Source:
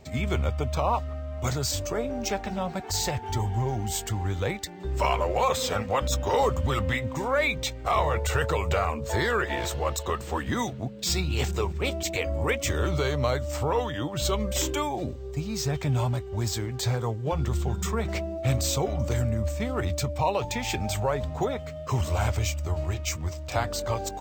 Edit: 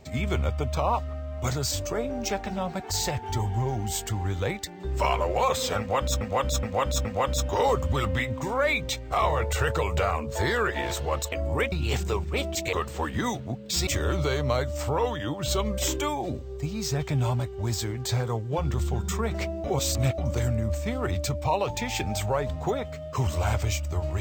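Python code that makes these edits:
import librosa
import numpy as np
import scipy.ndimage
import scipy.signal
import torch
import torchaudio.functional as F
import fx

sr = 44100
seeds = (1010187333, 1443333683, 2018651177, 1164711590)

y = fx.edit(x, sr, fx.repeat(start_s=5.79, length_s=0.42, count=4),
    fx.swap(start_s=10.06, length_s=1.14, other_s=12.21, other_length_s=0.4),
    fx.reverse_span(start_s=18.38, length_s=0.54), tone=tone)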